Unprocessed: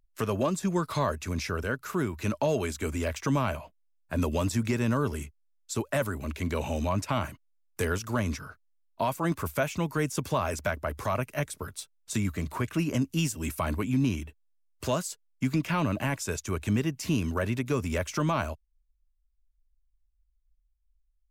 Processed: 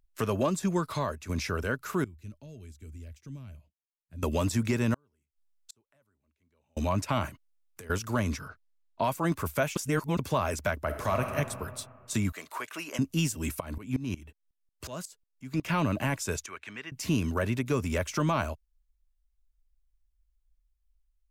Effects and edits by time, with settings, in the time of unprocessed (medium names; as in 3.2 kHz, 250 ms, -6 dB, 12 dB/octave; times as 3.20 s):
0.70–1.29 s: fade out, to -8 dB
2.04–4.23 s: amplifier tone stack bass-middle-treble 10-0-1
4.94–6.77 s: inverted gate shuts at -32 dBFS, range -42 dB
7.29–7.90 s: compression 20:1, threshold -42 dBFS
8.48–9.04 s: low-pass 5.8 kHz
9.76–10.19 s: reverse
10.85–11.36 s: reverb throw, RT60 2 s, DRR 4 dB
12.32–12.99 s: high-pass 660 Hz
13.60–15.65 s: sawtooth tremolo in dB swelling 5.5 Hz, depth 19 dB
16.46–16.92 s: band-pass filter 1.9 kHz, Q 1.3